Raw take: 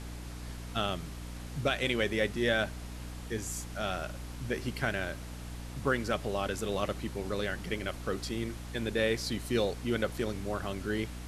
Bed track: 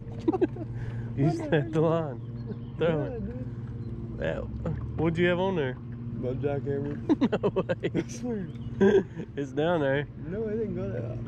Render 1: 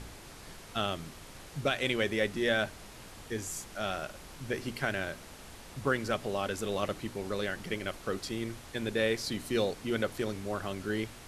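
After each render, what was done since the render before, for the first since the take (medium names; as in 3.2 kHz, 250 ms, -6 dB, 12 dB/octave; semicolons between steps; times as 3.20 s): de-hum 60 Hz, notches 5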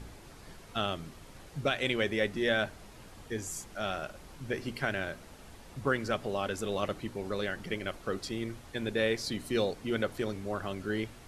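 noise reduction 6 dB, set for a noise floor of -50 dBFS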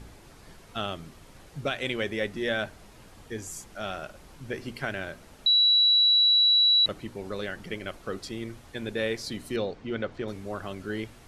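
5.46–6.86 s: bleep 3.92 kHz -17 dBFS; 9.56–10.28 s: distance through air 140 m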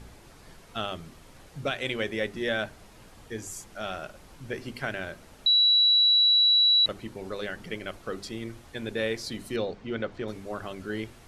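hum notches 50/100/150/200/250/300/350/400 Hz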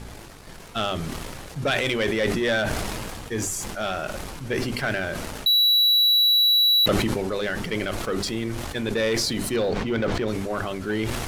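waveshaping leveller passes 2; decay stretcher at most 22 dB/s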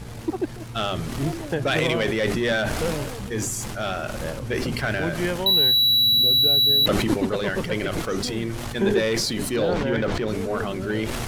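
add bed track -1.5 dB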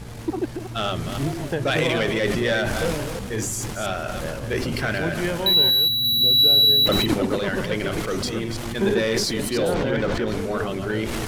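chunks repeated in reverse 168 ms, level -7 dB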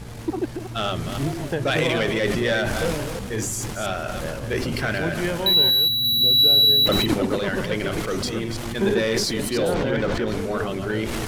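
no audible change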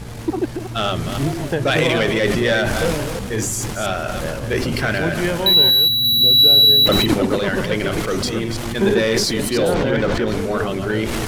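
trim +4.5 dB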